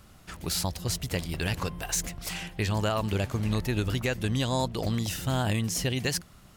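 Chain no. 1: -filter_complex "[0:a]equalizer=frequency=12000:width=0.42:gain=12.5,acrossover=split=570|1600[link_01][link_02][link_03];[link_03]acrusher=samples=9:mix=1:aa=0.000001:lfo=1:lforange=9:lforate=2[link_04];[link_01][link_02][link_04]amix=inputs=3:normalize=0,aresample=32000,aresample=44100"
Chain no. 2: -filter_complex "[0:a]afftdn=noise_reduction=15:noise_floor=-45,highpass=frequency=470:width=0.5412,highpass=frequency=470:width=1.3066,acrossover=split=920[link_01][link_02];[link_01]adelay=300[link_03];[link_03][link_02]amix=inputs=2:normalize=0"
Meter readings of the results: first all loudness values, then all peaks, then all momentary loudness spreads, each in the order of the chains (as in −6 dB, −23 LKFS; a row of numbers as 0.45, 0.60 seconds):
−27.5, −34.0 LKFS; −7.5, −15.5 dBFS; 6, 6 LU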